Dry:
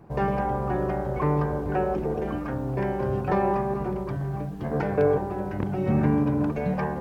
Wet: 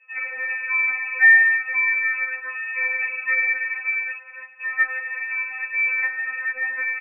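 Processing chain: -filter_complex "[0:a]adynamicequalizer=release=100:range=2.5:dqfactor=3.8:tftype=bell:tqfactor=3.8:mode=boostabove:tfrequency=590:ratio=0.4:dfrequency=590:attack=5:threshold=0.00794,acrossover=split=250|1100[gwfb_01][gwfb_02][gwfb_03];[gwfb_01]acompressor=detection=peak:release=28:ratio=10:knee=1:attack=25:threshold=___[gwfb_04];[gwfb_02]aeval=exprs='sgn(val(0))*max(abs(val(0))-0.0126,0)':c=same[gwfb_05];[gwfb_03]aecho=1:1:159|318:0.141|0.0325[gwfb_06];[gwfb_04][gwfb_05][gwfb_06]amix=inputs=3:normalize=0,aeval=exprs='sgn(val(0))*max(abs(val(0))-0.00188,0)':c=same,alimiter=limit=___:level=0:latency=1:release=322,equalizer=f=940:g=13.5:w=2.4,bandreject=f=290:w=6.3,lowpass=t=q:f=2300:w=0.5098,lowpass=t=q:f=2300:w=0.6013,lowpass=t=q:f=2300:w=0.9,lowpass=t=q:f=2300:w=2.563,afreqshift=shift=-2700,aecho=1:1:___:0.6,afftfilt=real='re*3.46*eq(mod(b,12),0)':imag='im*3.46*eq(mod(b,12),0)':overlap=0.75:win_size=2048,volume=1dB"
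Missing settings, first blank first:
-38dB, -16dB, 2.2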